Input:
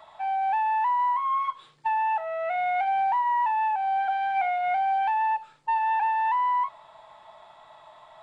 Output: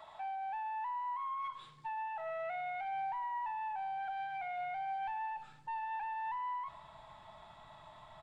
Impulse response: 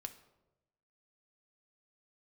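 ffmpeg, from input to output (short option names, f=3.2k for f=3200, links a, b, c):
-af "asubboost=boost=5:cutoff=220,alimiter=level_in=7.5dB:limit=-24dB:level=0:latency=1:release=42,volume=-7.5dB,aecho=1:1:113|226|339|452|565:0.119|0.0701|0.0414|0.0244|0.0144,volume=-3.5dB"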